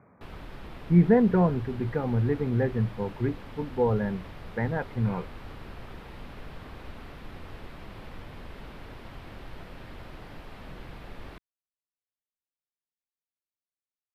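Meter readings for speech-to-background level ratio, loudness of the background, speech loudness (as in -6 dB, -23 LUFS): 19.0 dB, -45.5 LUFS, -26.5 LUFS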